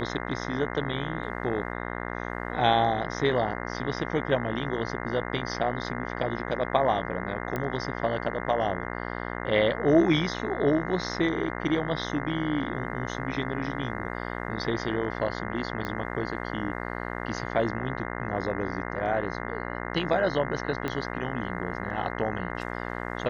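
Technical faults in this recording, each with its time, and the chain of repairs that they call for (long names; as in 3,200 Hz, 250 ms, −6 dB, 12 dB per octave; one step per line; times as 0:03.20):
mains buzz 60 Hz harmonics 35 −34 dBFS
0:07.56: click −17 dBFS
0:15.85: click −19 dBFS
0:20.88: click −16 dBFS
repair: click removal
hum removal 60 Hz, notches 35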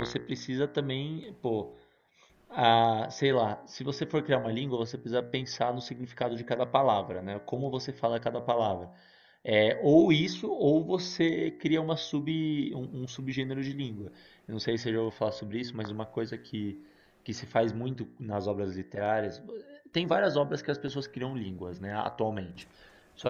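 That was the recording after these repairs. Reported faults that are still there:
0:20.88: click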